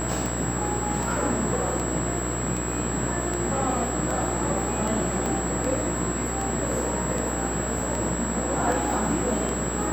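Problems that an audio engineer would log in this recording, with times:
buzz 60 Hz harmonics 30 -31 dBFS
tick
whine 7.7 kHz -32 dBFS
5.26 s: pop

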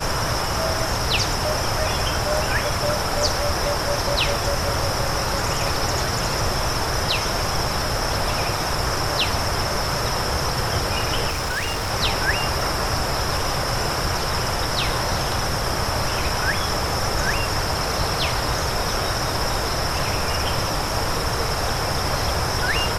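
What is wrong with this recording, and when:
11.28–11.92 s: clipped -21.5 dBFS
12.61 s: dropout 2.1 ms

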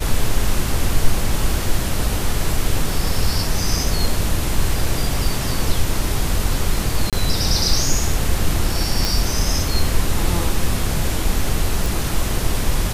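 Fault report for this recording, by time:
7.10–7.13 s: dropout 27 ms
9.05 s: pop
11.86 s: pop

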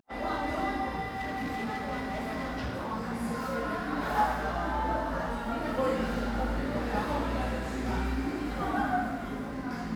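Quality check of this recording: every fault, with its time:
1.12–2.93 s: clipped -30 dBFS

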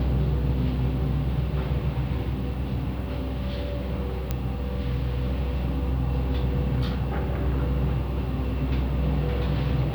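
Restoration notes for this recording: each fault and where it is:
4.31 s: pop -13 dBFS

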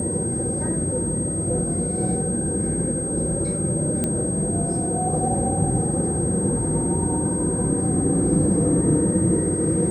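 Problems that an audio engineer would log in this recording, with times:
whine 8.4 kHz -27 dBFS
4.04 s: pop -10 dBFS

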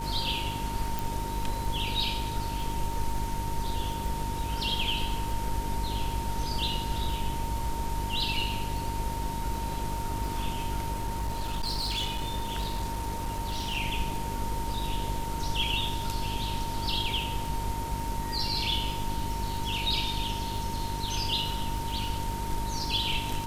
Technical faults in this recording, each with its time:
crackle 43 per s -36 dBFS
hum 50 Hz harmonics 8 -36 dBFS
whine 920 Hz -35 dBFS
0.99 s: pop
10.92–13.78 s: clipped -26.5 dBFS

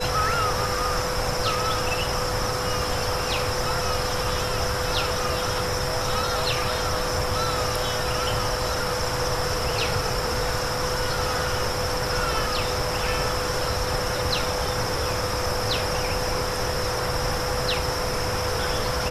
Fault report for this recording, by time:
whine 500 Hz -30 dBFS

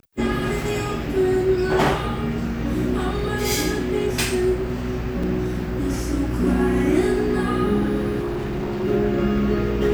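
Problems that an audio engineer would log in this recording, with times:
5.23 s: dropout 4.1 ms
8.20–8.85 s: clipped -22.5 dBFS

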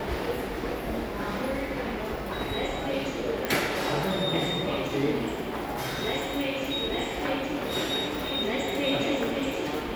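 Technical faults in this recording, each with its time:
3.45 s: pop

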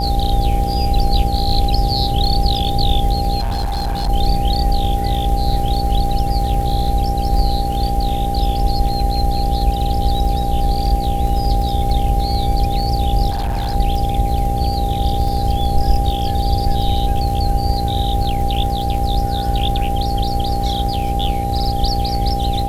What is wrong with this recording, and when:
buzz 60 Hz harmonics 14 -22 dBFS
crackle 38 per s -24 dBFS
whine 800 Hz -21 dBFS
3.39–4.10 s: clipped -16.5 dBFS
13.30–13.76 s: clipped -16.5 dBFS

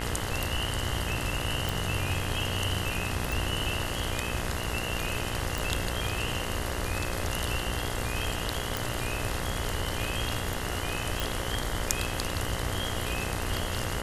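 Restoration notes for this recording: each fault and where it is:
buzz 60 Hz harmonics 35 -36 dBFS
1.69 s: pop
3.32 s: pop
5.58 s: pop
8.77 s: pop
11.20 s: pop

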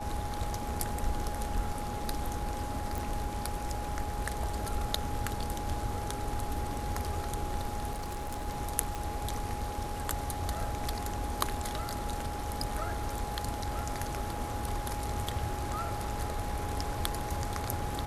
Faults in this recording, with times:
whine 830 Hz -39 dBFS
2.98 s: pop
7.92–8.46 s: clipped -32.5 dBFS
8.95 s: pop

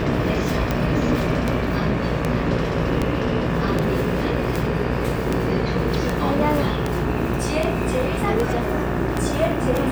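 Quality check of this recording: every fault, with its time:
buzz 60 Hz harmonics 31 -26 dBFS
tick 78 rpm -8 dBFS

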